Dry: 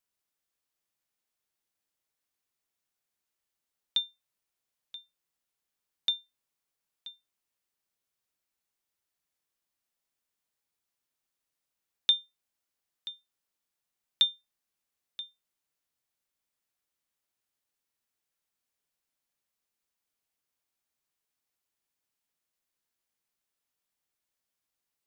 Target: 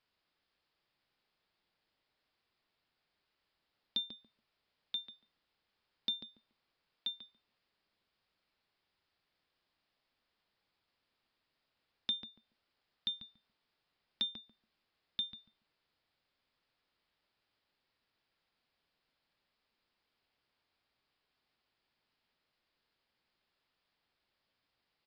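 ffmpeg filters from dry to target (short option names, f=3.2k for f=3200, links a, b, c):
-filter_complex "[0:a]acompressor=threshold=-38dB:ratio=6,aresample=11025,asoftclip=type=tanh:threshold=-35dB,aresample=44100,asplit=2[a][b];[b]adelay=142,lowpass=f=1.1k:p=1,volume=-5dB,asplit=2[c][d];[d]adelay=142,lowpass=f=1.1k:p=1,volume=0.22,asplit=2[e][f];[f]adelay=142,lowpass=f=1.1k:p=1,volume=0.22[g];[a][c][e][g]amix=inputs=4:normalize=0,volume=8dB"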